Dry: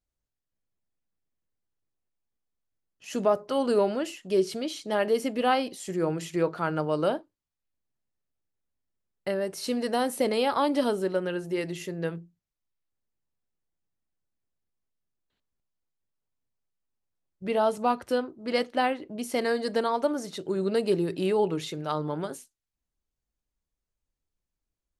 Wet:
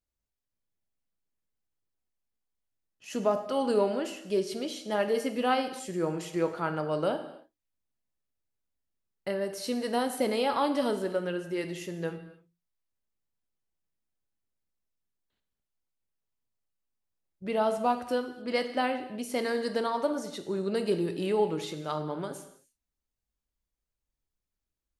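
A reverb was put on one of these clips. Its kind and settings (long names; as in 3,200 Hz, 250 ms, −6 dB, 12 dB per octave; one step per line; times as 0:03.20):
reverb whose tail is shaped and stops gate 330 ms falling, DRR 7 dB
level −3 dB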